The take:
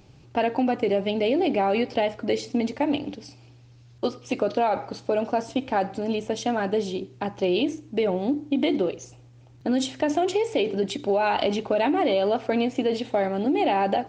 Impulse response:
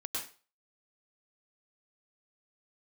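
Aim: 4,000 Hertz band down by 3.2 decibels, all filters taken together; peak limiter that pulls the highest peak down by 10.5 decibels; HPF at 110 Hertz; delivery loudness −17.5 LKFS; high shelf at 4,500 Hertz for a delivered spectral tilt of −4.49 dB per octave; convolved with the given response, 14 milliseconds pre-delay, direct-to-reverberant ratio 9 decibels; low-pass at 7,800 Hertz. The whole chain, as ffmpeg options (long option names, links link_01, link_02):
-filter_complex "[0:a]highpass=110,lowpass=7800,equalizer=frequency=4000:width_type=o:gain=-8.5,highshelf=frequency=4500:gain=7.5,alimiter=limit=-21.5dB:level=0:latency=1,asplit=2[link_01][link_02];[1:a]atrim=start_sample=2205,adelay=14[link_03];[link_02][link_03]afir=irnorm=-1:irlink=0,volume=-11dB[link_04];[link_01][link_04]amix=inputs=2:normalize=0,volume=12.5dB"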